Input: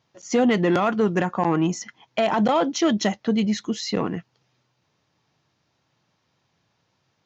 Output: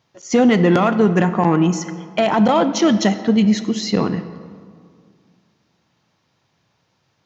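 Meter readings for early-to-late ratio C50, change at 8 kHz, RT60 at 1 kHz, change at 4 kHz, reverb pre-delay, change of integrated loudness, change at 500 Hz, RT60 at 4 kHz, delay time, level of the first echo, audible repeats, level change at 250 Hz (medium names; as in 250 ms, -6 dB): 12.0 dB, no reading, 2.0 s, +4.0 dB, 27 ms, +6.0 dB, +5.0 dB, 1.2 s, no echo, no echo, no echo, +7.0 dB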